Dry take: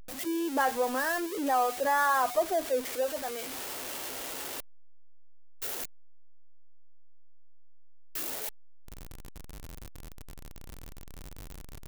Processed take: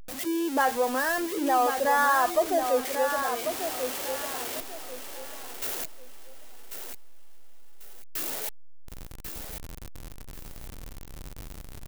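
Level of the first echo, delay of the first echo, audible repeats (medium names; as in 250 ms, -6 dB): -7.5 dB, 1092 ms, 3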